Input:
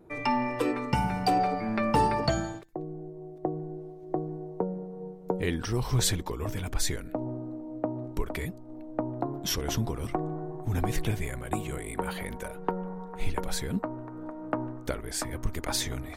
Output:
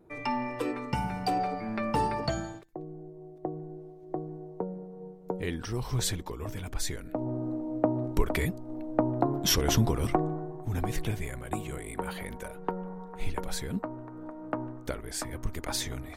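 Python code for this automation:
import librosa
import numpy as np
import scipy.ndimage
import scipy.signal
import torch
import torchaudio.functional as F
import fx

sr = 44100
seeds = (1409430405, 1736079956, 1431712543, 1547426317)

y = fx.gain(x, sr, db=fx.line((6.94, -4.0), (7.48, 5.0), (10.11, 5.0), (10.54, -2.5)))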